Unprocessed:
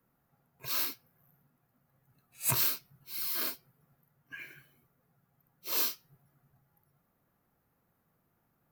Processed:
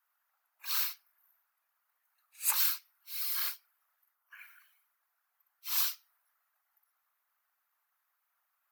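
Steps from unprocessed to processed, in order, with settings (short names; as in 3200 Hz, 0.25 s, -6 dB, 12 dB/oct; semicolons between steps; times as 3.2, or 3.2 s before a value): inverse Chebyshev high-pass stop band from 170 Hz, stop band 80 dB; whisperiser; spectral gain 4.15–4.6, 1500–8900 Hz -7 dB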